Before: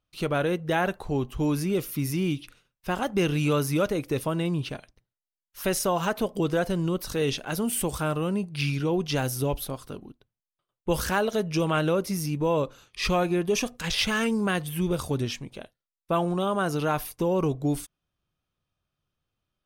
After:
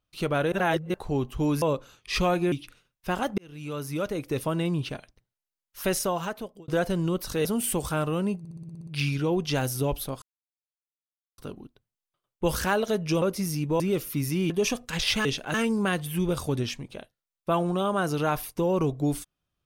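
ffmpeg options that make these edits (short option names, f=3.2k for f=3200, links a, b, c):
-filter_complex "[0:a]asplit=22[a][b][c][d][e][f][g][h][i][j][k][l][m][n][o][p][q][r][s][t][u][v];[a]atrim=end=0.522[w];[b]atrim=start=0.518:end=0.942,asetpts=PTS-STARTPTS,areverse[x];[c]atrim=start=0.938:end=1.622[y];[d]atrim=start=12.508:end=13.412[z];[e]atrim=start=2.318:end=3.18,asetpts=PTS-STARTPTS,afade=t=out:st=0.858:d=0.004:c=hsin[aa];[f]atrim=start=3.18:end=6.48,asetpts=PTS-STARTPTS,afade=t=in:d=1.13,afade=t=out:st=2.54:d=0.76[ab];[g]atrim=start=6.48:end=7.252,asetpts=PTS-STARTPTS,afade=t=in:d=0.004:c=hsin[ac];[h]atrim=start=7.538:end=8.542[ad];[i]atrim=start=8.478:end=8.542[ae];[j]atrim=start=8.478:end=8.542[af];[k]atrim=start=8.478:end=8.542[ag];[l]atrim=start=8.478:end=8.542[ah];[m]atrim=start=8.478:end=8.542[ai];[n]atrim=start=8.478:end=8.542[aj];[o]atrim=start=8.478:end=8.542[ak];[p]atrim=start=8.478:end=9.83,asetpts=PTS-STARTPTS,afade=t=out:st=1.348:d=0.004:c=hsin,apad=pad_dur=1.16[al];[q]atrim=start=9.83:end=11.672,asetpts=PTS-STARTPTS,afade=t=in:d=0.004:c=hsin[am];[r]atrim=start=11.928:end=12.512[an];[s]atrim=start=1.618:end=2.322[ao];[t]atrim=start=13.408:end=14.162[ap];[u]atrim=start=7.248:end=7.542[aq];[v]atrim=start=14.158[ar];[w][x]acrossfade=d=0.004:c1=hsin:c2=hsin[as];[as][y]acrossfade=d=0.004:c1=hsin:c2=hsin[at];[at][z]acrossfade=d=0.004:c1=hsin:c2=hsin[au];[aa][ab][ac]concat=n=3:v=0:a=1[av];[au][av]acrossfade=d=0.004:c1=hsin:c2=hsin[aw];[aw][ad]acrossfade=d=0.004:c1=hsin:c2=hsin[ax];[ax][ae]acrossfade=d=0.004:c1=hsin:c2=hsin[ay];[ay][af]acrossfade=d=0.004:c1=hsin:c2=hsin[az];[az][ag]acrossfade=d=0.004:c1=hsin:c2=hsin[ba];[ba][ah]acrossfade=d=0.004:c1=hsin:c2=hsin[bb];[bb][ai]acrossfade=d=0.004:c1=hsin:c2=hsin[bc];[bc][aj]acrossfade=d=0.004:c1=hsin:c2=hsin[bd];[bd][ak]acrossfade=d=0.004:c1=hsin:c2=hsin[be];[al][am]concat=n=2:v=0:a=1[bf];[be][bf]acrossfade=d=0.004:c1=hsin:c2=hsin[bg];[bg][an]acrossfade=d=0.004:c1=hsin:c2=hsin[bh];[bh][ao]acrossfade=d=0.004:c1=hsin:c2=hsin[bi];[bi][ap]acrossfade=d=0.004:c1=hsin:c2=hsin[bj];[bj][aq]acrossfade=d=0.004:c1=hsin:c2=hsin[bk];[bk][ar]acrossfade=d=0.004:c1=hsin:c2=hsin"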